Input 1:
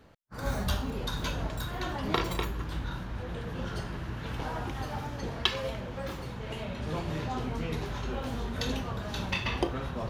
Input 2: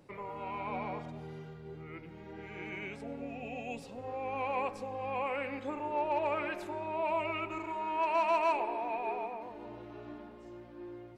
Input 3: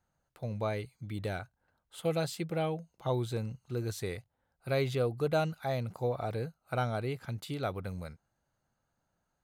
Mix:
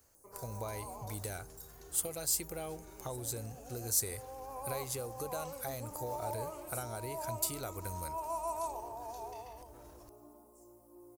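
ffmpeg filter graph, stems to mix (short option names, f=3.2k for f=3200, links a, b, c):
-filter_complex "[0:a]acrossover=split=120[a][b];[b]acompressor=threshold=-41dB:ratio=6[c];[a][c]amix=inputs=2:normalize=0,alimiter=level_in=11dB:limit=-24dB:level=0:latency=1:release=39,volume=-11dB,volume=-13.5dB[d];[1:a]firequalizer=gain_entry='entry(1100,0);entry(1600,-22);entry(9600,7)':delay=0.05:min_phase=1,adelay=150,volume=-8dB[e];[2:a]acompressor=threshold=-35dB:ratio=12,bass=f=250:g=4,treble=f=4k:g=-1,volume=-1.5dB[f];[d][e][f]amix=inputs=3:normalize=0,aexciter=amount=9.3:drive=6.1:freq=5.2k,equalizer=f=170:w=1.2:g=-10.5"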